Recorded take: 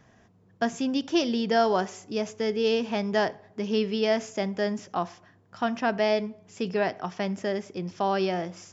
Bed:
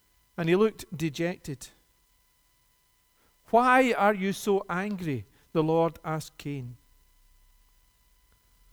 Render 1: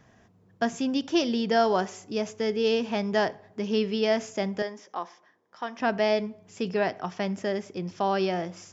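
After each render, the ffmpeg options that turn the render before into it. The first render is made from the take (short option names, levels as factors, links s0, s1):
-filter_complex "[0:a]asettb=1/sr,asplit=3[s0][s1][s2];[s0]atrim=end=4.624[s3];[s1]atrim=start=4.62:end=5.8,asetpts=PTS-STARTPTS,afade=t=in:d=0.004:c=qsin,afade=t=out:st=1.176:d=0.004:c=qsin,highpass=480,equalizer=f=690:t=q:w=4:g=-7,equalizer=f=1400:t=q:w=4:g=-7,equalizer=f=2700:t=q:w=4:g=-9,equalizer=f=4300:t=q:w=4:g=-7,lowpass=f=5900:w=0.5412,lowpass=f=5900:w=1.3066[s4];[s2]atrim=start=5.796[s5];[s3][s4]acrossfade=d=0.004:c1=hsin:c2=qsin[s6];[s6][s5]acrossfade=d=0.004:c1=qsin:c2=hsin"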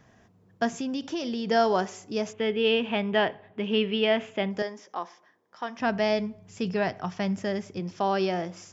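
-filter_complex "[0:a]asettb=1/sr,asplit=3[s0][s1][s2];[s0]atrim=end=0.734[s3];[s1]atrim=start=0.73:end=1.48,asetpts=PTS-STARTPTS,afade=t=in:d=0.004:c=qsin,afade=t=out:st=0.746:d=0.004:c=qsin,acompressor=threshold=0.0447:ratio=6:attack=3.2:release=140:knee=1:detection=peak[s4];[s2]atrim=start=1.476[s5];[s3][s4]acrossfade=d=0.004:c1=hsin:c2=qsin[s6];[s6][s5]acrossfade=d=0.004:c1=qsin:c2=hsin,asettb=1/sr,asplit=3[s7][s8][s9];[s7]atrim=end=2.334[s10];[s8]atrim=start=2.33:end=4.51,asetpts=PTS-STARTPTS,afade=t=in:d=0.004:c=qsin,afade=t=out:st=2.176:d=0.004:c=qsin,highshelf=f=4100:t=q:w=3:g=-11[s11];[s9]atrim=start=4.506[s12];[s10][s11]acrossfade=d=0.004:c1=hsin:c2=qsin[s13];[s13][s12]acrossfade=d=0.004:c1=qsin:c2=hsin,asplit=3[s14][s15][s16];[s14]afade=t=out:st=5.69:d=0.02[s17];[s15]asubboost=boost=3:cutoff=170,afade=t=in:st=5.69:d=0.02,afade=t=out:st=7.79:d=0.02[s18];[s16]afade=t=in:st=7.79:d=0.02[s19];[s17][s18][s19]amix=inputs=3:normalize=0"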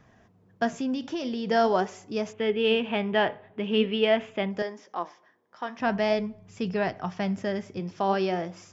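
-filter_complex "[0:a]flanger=delay=0.8:depth=7.5:regen=82:speed=0.46:shape=sinusoidal,asplit=2[s0][s1];[s1]adynamicsmooth=sensitivity=1:basefreq=5500,volume=0.75[s2];[s0][s2]amix=inputs=2:normalize=0"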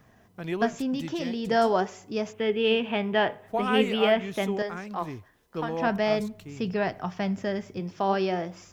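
-filter_complex "[1:a]volume=0.422[s0];[0:a][s0]amix=inputs=2:normalize=0"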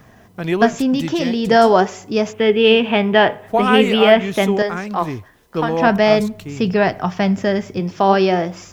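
-af "volume=3.76,alimiter=limit=0.891:level=0:latency=1"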